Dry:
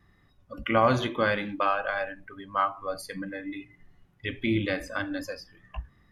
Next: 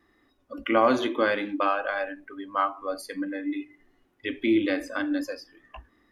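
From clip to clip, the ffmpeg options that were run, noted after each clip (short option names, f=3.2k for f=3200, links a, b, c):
-af "lowshelf=f=210:t=q:w=3:g=-10.5"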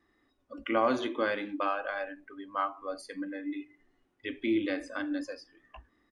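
-af "aresample=22050,aresample=44100,volume=-6dB"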